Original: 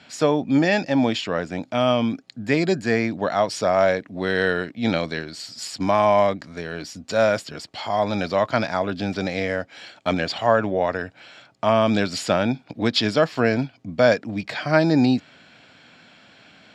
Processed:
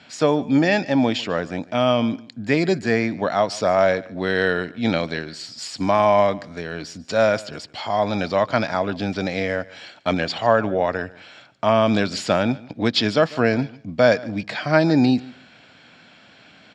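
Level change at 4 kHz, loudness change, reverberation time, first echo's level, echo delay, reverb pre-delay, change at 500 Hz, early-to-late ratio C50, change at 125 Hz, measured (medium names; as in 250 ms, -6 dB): +1.0 dB, +1.0 dB, no reverb, -21.0 dB, 146 ms, no reverb, +1.0 dB, no reverb, +1.0 dB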